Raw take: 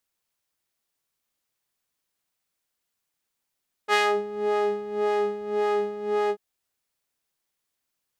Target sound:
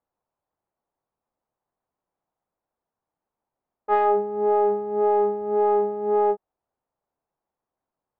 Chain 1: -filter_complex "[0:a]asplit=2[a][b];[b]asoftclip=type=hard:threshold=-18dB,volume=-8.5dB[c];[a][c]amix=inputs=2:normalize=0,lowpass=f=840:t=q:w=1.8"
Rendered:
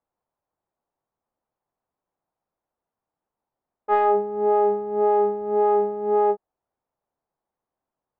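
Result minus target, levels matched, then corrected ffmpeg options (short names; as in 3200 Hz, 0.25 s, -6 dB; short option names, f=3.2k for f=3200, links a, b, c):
hard clip: distortion -7 dB
-filter_complex "[0:a]asplit=2[a][b];[b]asoftclip=type=hard:threshold=-25.5dB,volume=-8.5dB[c];[a][c]amix=inputs=2:normalize=0,lowpass=f=840:t=q:w=1.8"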